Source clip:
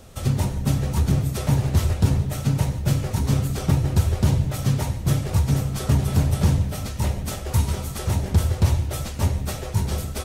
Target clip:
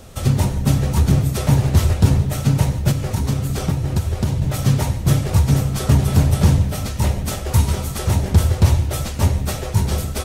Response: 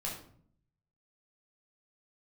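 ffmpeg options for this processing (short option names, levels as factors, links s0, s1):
-filter_complex "[0:a]asettb=1/sr,asplit=3[s0][s1][s2];[s0]atrim=end=2.904[s3];[s1]atrim=start=2.9:end=4.42,asetpts=PTS-STARTPTS,afade=t=in:d=0.004:c=qsin,afade=t=out:st=1.516:d=0.004:c=qsin,acompressor=threshold=0.0891:ratio=6[s4];[s2]atrim=start=4.416[s5];[s3][s4]acrossfade=d=0.004:c1=hsin:c2=qsin[s6];[s6][s5]acrossfade=d=0.004:c1=qsin:c2=hsin,volume=1.78"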